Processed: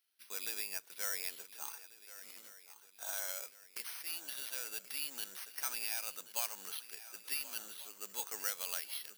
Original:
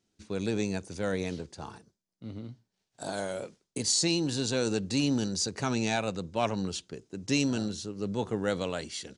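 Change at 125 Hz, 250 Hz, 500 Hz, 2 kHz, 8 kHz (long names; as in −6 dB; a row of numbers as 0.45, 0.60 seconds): below −40 dB, −35.0 dB, −22.5 dB, −7.5 dB, −6.0 dB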